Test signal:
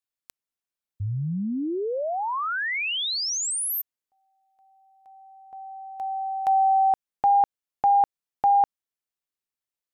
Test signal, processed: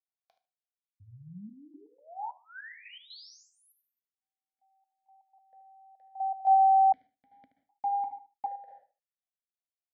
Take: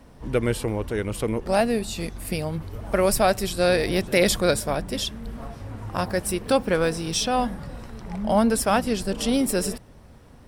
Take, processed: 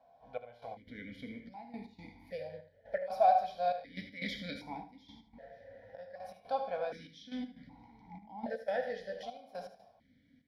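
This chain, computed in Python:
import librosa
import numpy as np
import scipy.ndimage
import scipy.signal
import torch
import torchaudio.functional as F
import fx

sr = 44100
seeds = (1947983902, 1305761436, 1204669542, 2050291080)

y = fx.rev_gated(x, sr, seeds[0], gate_ms=210, shape='falling', drr_db=3.5)
y = fx.step_gate(y, sr, bpm=121, pattern='xxx..x.xx', floor_db=-12.0, edge_ms=4.5)
y = fx.fixed_phaser(y, sr, hz=1800.0, stages=8)
y = fx.echo_feedback(y, sr, ms=76, feedback_pct=17, wet_db=-12)
y = fx.vowel_held(y, sr, hz=1.3)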